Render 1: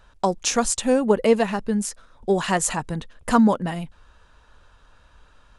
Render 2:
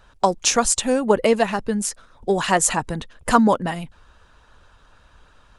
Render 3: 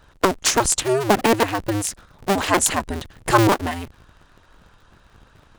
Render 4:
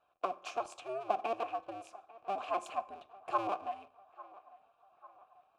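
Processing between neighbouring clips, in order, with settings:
harmonic-percussive split percussive +6 dB; gain -1 dB
cycle switcher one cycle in 2, inverted
vowel filter a; narrowing echo 0.846 s, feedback 58%, band-pass 1000 Hz, level -19 dB; reverb RT60 0.65 s, pre-delay 3 ms, DRR 12.5 dB; gain -7.5 dB

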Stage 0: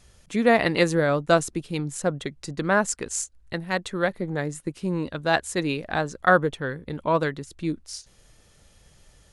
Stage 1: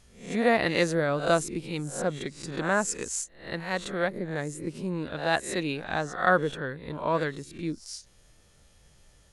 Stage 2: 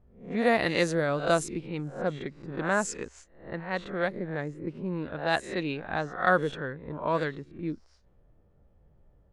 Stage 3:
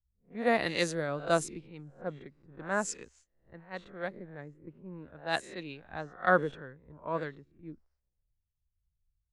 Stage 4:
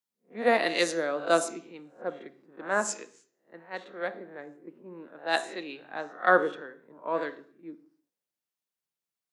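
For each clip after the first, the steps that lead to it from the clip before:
spectral swells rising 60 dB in 0.44 s; gain -5 dB
low-pass opened by the level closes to 680 Hz, open at -20 dBFS; gain -1 dB
three-band expander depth 100%; gain -7.5 dB
HPF 250 Hz 24 dB/oct; on a send at -11 dB: reverb RT60 0.50 s, pre-delay 3 ms; on the sum: gain +4 dB

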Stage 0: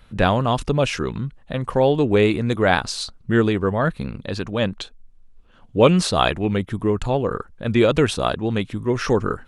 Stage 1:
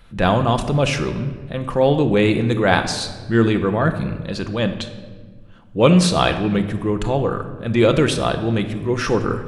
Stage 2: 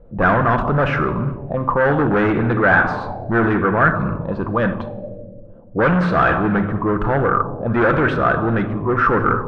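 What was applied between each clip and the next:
transient shaper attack -4 dB, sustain +1 dB; shoebox room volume 1400 m³, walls mixed, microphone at 0.78 m; gain +1.5 dB
hard clip -17 dBFS, distortion -8 dB; envelope low-pass 500–1500 Hz up, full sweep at -18 dBFS; gain +2.5 dB

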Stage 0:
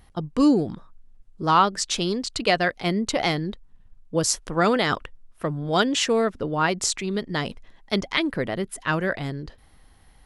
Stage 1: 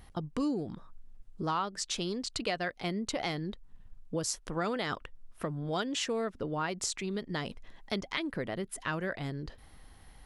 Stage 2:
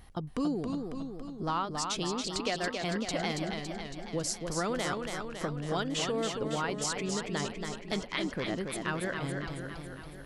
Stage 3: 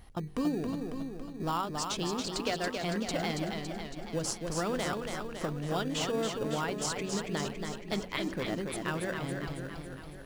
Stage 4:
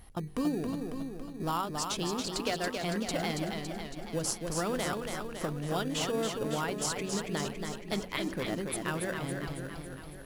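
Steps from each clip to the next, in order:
compressor 2.5:1, threshold -36 dBFS, peak gain reduction 15.5 dB
warbling echo 0.277 s, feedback 63%, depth 97 cents, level -5 dB
de-hum 46.98 Hz, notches 10; in parallel at -9.5 dB: sample-and-hold 21×; on the sum: gain -1.5 dB
bell 11000 Hz +8.5 dB 0.47 oct

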